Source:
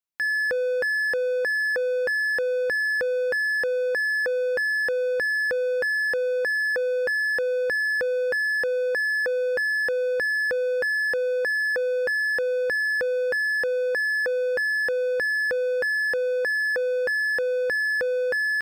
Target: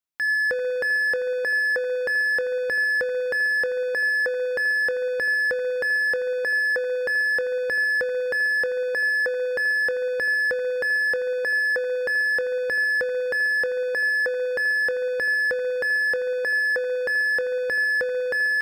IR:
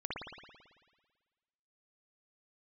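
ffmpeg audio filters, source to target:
-filter_complex "[0:a]asplit=2[link_01][link_02];[1:a]atrim=start_sample=2205,lowpass=5700,adelay=25[link_03];[link_02][link_03]afir=irnorm=-1:irlink=0,volume=-11dB[link_04];[link_01][link_04]amix=inputs=2:normalize=0"

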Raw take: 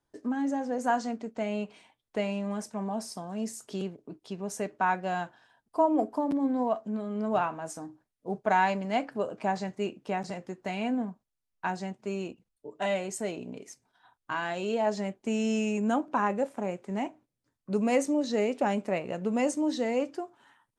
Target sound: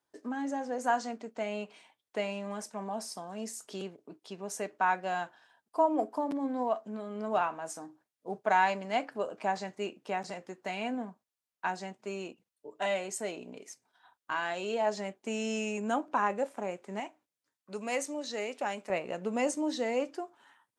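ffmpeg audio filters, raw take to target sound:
ffmpeg -i in.wav -af "asetnsamples=nb_out_samples=441:pad=0,asendcmd='17 highpass f 1200;18.9 highpass f 390',highpass=frequency=470:poles=1" out.wav

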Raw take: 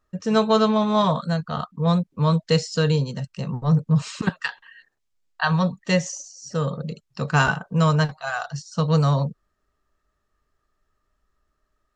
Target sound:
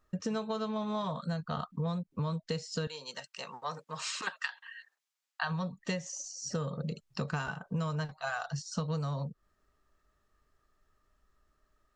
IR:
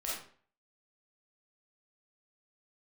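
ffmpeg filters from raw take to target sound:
-filter_complex "[0:a]asettb=1/sr,asplit=3[link_01][link_02][link_03];[link_01]atrim=end=2.874[link_04];[link_02]atrim=start=2.87:end=5.43,asetpts=PTS-STARTPTS,afade=type=in:duration=0.004:curve=qsin,afade=type=out:start_time=2.556:duration=0.004:curve=qsin,highpass=890[link_05];[link_03]atrim=start=5.426[link_06];[link_04][link_05]acrossfade=duration=0.004:curve1=hsin:curve2=qsin[link_07];[link_07][link_06]acrossfade=duration=0.004:curve1=qsin:curve2=hsin,acompressor=threshold=-31dB:ratio=16"

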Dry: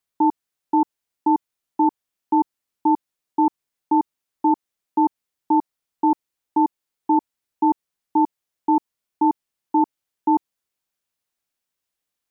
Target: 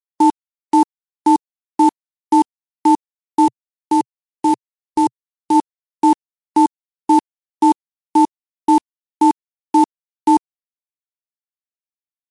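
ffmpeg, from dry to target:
ffmpeg -i in.wav -filter_complex "[0:a]acrusher=bits=6:dc=4:mix=0:aa=0.000001,asplit=3[link_01][link_02][link_03];[link_01]afade=type=out:start_time=3.45:duration=0.02[link_04];[link_02]equalizer=frequency=125:width_type=o:width=1:gain=10,equalizer=frequency=250:width_type=o:width=1:gain=-8,equalizer=frequency=500:width_type=o:width=1:gain=7,equalizer=frequency=1000:width_type=o:width=1:gain=-5,afade=type=in:start_time=3.45:duration=0.02,afade=type=out:start_time=5.54:duration=0.02[link_05];[link_03]afade=type=in:start_time=5.54:duration=0.02[link_06];[link_04][link_05][link_06]amix=inputs=3:normalize=0,volume=6dB" -ar 24000 -c:a libmp3lame -b:a 144k out.mp3

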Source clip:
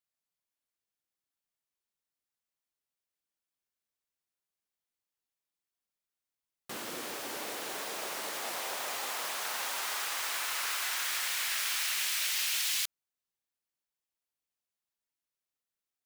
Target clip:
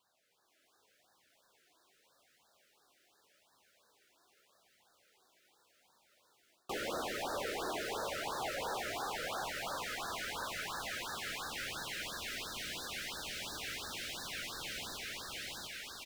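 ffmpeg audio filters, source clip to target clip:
ffmpeg -i in.wav -filter_complex "[0:a]dynaudnorm=framelen=190:gausssize=5:maxgain=6dB,asplit=2[link_01][link_02];[link_02]aeval=exprs='(mod(26.6*val(0)+1,2)-1)/26.6':channel_layout=same,volume=-7dB[link_03];[link_01][link_03]amix=inputs=2:normalize=0,aecho=1:1:704|1408|2112|2816|3520|4224:0.562|0.281|0.141|0.0703|0.0351|0.0176,areverse,acompressor=threshold=-38dB:ratio=16,areverse,flanger=delay=0.9:depth=2.2:regen=45:speed=0.84:shape=triangular,asplit=2[link_04][link_05];[link_05]highpass=frequency=720:poles=1,volume=26dB,asoftclip=type=tanh:threshold=-32.5dB[link_06];[link_04][link_06]amix=inputs=2:normalize=0,lowpass=frequency=1100:poles=1,volume=-6dB,afftfilt=real='re*(1-between(b*sr/1024,870*pow(2600/870,0.5+0.5*sin(2*PI*2.9*pts/sr))/1.41,870*pow(2600/870,0.5+0.5*sin(2*PI*2.9*pts/sr))*1.41))':imag='im*(1-between(b*sr/1024,870*pow(2600/870,0.5+0.5*sin(2*PI*2.9*pts/sr))/1.41,870*pow(2600/870,0.5+0.5*sin(2*PI*2.9*pts/sr))*1.41))':win_size=1024:overlap=0.75,volume=7.5dB" out.wav

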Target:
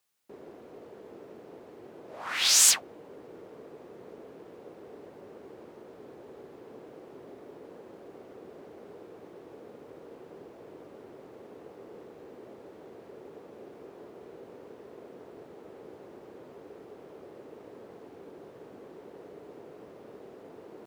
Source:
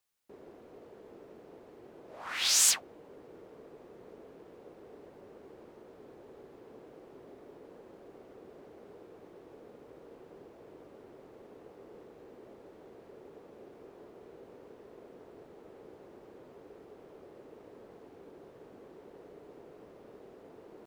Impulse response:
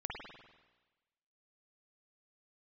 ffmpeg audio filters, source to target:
-af "highpass=80,volume=4.5dB"

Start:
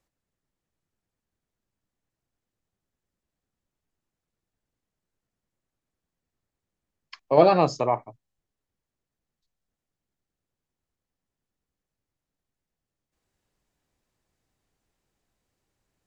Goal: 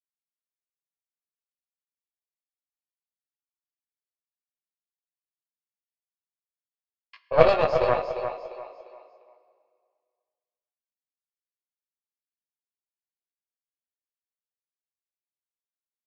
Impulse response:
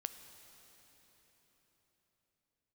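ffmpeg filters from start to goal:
-filter_complex "[0:a]highpass=frequency=450:width=0.5412,highpass=frequency=450:width=1.3066,equalizer=frequency=500:width_type=q:width=4:gain=4,equalizer=frequency=860:width_type=q:width=4:gain=-6,equalizer=frequency=2700:width_type=q:width=4:gain=5,lowpass=frequency=4200:width=0.5412,lowpass=frequency=4200:width=1.3066,agate=range=-33dB:threshold=-40dB:ratio=3:detection=peak,flanger=delay=15.5:depth=3.2:speed=0.46,aecho=1:1:349|698|1047|1396:0.473|0.17|0.0613|0.0221,asplit=2[link_01][link_02];[1:a]atrim=start_sample=2205,asetrate=83790,aresample=44100,adelay=8[link_03];[link_02][link_03]afir=irnorm=-1:irlink=0,volume=8.5dB[link_04];[link_01][link_04]amix=inputs=2:normalize=0,aeval=exprs='0.708*(cos(1*acos(clip(val(0)/0.708,-1,1)))-cos(1*PI/2))+0.0447*(cos(3*acos(clip(val(0)/0.708,-1,1)))-cos(3*PI/2))+0.112*(cos(4*acos(clip(val(0)/0.708,-1,1)))-cos(4*PI/2))+0.0158*(cos(7*acos(clip(val(0)/0.708,-1,1)))-cos(7*PI/2))':channel_layout=same,volume=1dB"

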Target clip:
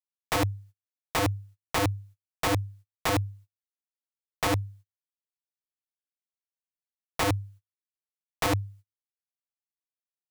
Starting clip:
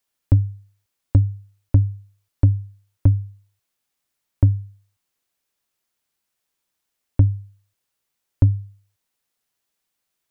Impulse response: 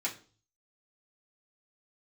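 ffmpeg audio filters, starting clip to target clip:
-af "agate=range=-36dB:threshold=-47dB:ratio=16:detection=peak,aeval=exprs='(mod(10*val(0)+1,2)-1)/10':channel_layout=same"

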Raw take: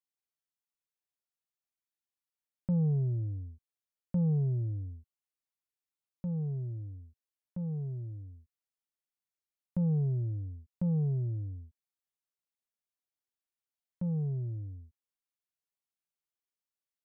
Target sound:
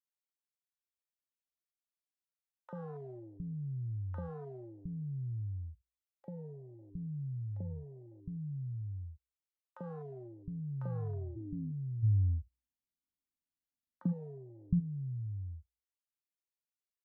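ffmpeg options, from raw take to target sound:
ffmpeg -i in.wav -filter_complex "[0:a]volume=32.5dB,asoftclip=hard,volume=-32.5dB,equalizer=frequency=61:width_type=o:width=0.2:gain=10.5,acompressor=threshold=-47dB:ratio=4,afwtdn=0.00178,asplit=3[link_01][link_02][link_03];[link_01]afade=type=out:start_time=11.31:duration=0.02[link_04];[link_02]lowshelf=frequency=360:width_type=q:width=3:gain=10.5,afade=type=in:start_time=11.31:duration=0.02,afade=type=out:start_time=14.07:duration=0.02[link_05];[link_03]afade=type=in:start_time=14.07:duration=0.02[link_06];[link_04][link_05][link_06]amix=inputs=3:normalize=0,acrossover=split=190|790[link_07][link_08][link_09];[link_08]adelay=40[link_10];[link_07]adelay=710[link_11];[link_11][link_10][link_09]amix=inputs=3:normalize=0,volume=8.5dB" out.wav

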